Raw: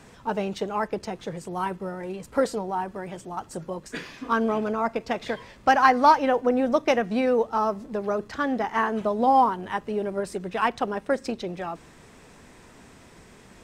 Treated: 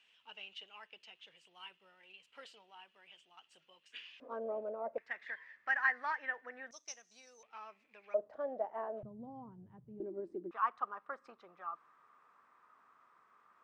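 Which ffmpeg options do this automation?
-af "asetnsamples=n=441:p=0,asendcmd='4.2 bandpass f 570;4.98 bandpass f 1800;6.71 bandpass f 6100;7.43 bandpass f 2400;8.14 bandpass f 610;9.03 bandpass f 130;10 bandpass f 330;10.51 bandpass f 1200',bandpass=f=2.9k:t=q:w=9.7:csg=0"

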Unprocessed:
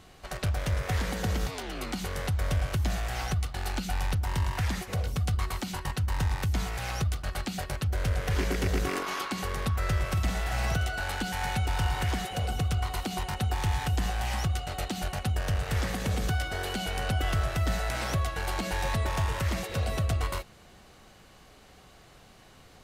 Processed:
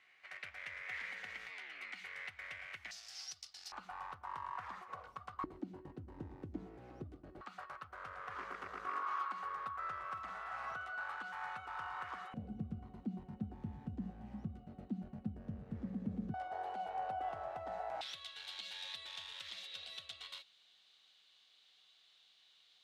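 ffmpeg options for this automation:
-af "asetnsamples=n=441:p=0,asendcmd='2.91 bandpass f 5200;3.72 bandpass f 1100;5.44 bandpass f 310;7.41 bandpass f 1200;12.34 bandpass f 220;16.34 bandpass f 780;18.01 bandpass f 3600',bandpass=f=2.1k:t=q:w=5:csg=0"

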